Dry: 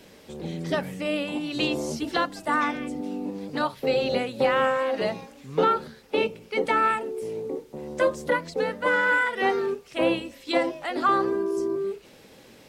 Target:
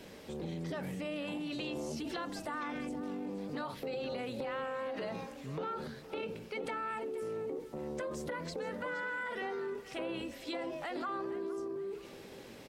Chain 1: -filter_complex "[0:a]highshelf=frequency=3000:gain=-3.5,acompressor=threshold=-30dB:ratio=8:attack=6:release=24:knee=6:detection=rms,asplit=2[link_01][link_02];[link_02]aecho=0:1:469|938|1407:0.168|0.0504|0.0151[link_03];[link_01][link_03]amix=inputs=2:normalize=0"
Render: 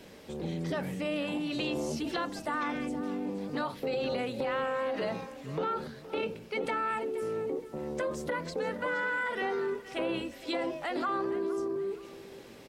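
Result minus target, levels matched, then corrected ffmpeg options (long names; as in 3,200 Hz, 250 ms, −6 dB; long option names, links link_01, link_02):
downward compressor: peak gain reduction −6.5 dB
-filter_complex "[0:a]highshelf=frequency=3000:gain=-3.5,acompressor=threshold=-37.5dB:ratio=8:attack=6:release=24:knee=6:detection=rms,asplit=2[link_01][link_02];[link_02]aecho=0:1:469|938|1407:0.168|0.0504|0.0151[link_03];[link_01][link_03]amix=inputs=2:normalize=0"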